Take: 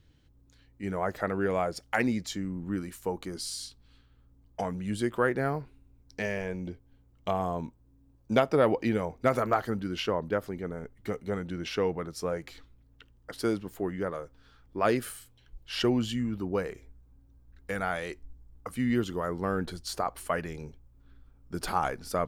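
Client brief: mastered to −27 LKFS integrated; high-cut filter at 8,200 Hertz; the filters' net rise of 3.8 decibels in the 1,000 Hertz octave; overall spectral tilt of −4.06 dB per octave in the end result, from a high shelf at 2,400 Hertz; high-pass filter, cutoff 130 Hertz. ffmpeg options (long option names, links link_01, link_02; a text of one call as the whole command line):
ffmpeg -i in.wav -af "highpass=130,lowpass=8200,equalizer=frequency=1000:width_type=o:gain=3.5,highshelf=frequency=2400:gain=8.5,volume=2.5dB" out.wav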